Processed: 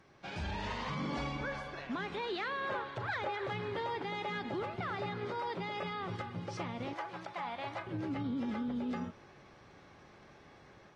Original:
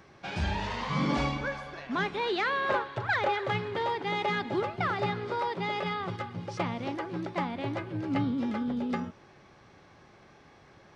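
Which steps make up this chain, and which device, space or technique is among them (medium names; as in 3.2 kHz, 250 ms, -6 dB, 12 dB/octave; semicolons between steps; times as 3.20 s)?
6.93–7.87 s: resonant low shelf 500 Hz -12 dB, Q 1.5; low-bitrate web radio (level rider gain up to 5 dB; peak limiter -22.5 dBFS, peak gain reduction 9.5 dB; trim -7.5 dB; AAC 32 kbps 32 kHz)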